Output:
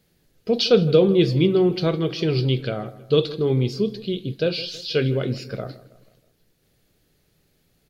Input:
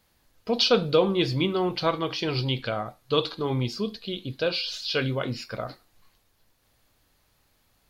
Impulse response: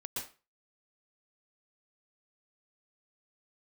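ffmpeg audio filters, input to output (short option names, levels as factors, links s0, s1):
-filter_complex "[0:a]equalizer=f=160:t=o:w=0.67:g=11,equalizer=f=400:t=o:w=0.67:g=9,equalizer=f=1000:t=o:w=0.67:g=-10,asplit=2[s0][s1];[s1]adelay=161,lowpass=f=2500:p=1,volume=0.141,asplit=2[s2][s3];[s3]adelay=161,lowpass=f=2500:p=1,volume=0.51,asplit=2[s4][s5];[s5]adelay=161,lowpass=f=2500:p=1,volume=0.51,asplit=2[s6][s7];[s7]adelay=161,lowpass=f=2500:p=1,volume=0.51[s8];[s0][s2][s4][s6][s8]amix=inputs=5:normalize=0"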